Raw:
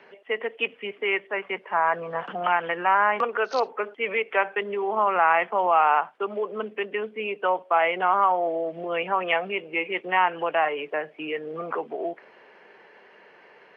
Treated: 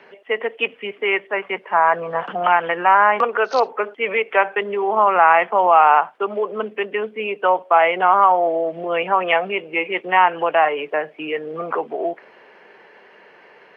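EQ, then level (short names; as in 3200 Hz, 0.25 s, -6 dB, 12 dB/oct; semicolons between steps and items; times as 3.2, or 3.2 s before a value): dynamic EQ 790 Hz, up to +3 dB, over -33 dBFS, Q 0.81; +4.5 dB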